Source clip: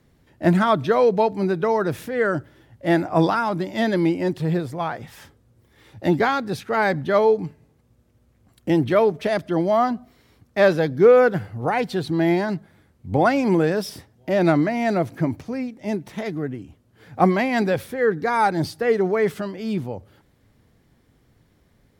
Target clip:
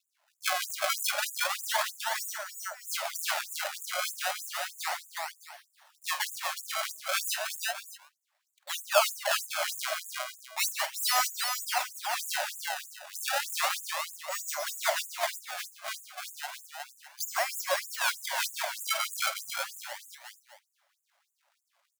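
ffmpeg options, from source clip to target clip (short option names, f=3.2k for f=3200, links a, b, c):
-af "acrusher=samples=28:mix=1:aa=0.000001:lfo=1:lforange=44.8:lforate=0.33,aeval=exprs='0.794*(cos(1*acos(clip(val(0)/0.794,-1,1)))-cos(1*PI/2))+0.0631*(cos(8*acos(clip(val(0)/0.794,-1,1)))-cos(8*PI/2))':c=same,aecho=1:1:48|145|366|611:0.266|0.251|0.631|0.211,afftfilt=real='re*gte(b*sr/1024,520*pow(6800/520,0.5+0.5*sin(2*PI*3.2*pts/sr)))':imag='im*gte(b*sr/1024,520*pow(6800/520,0.5+0.5*sin(2*PI*3.2*pts/sr)))':win_size=1024:overlap=0.75,volume=-4dB"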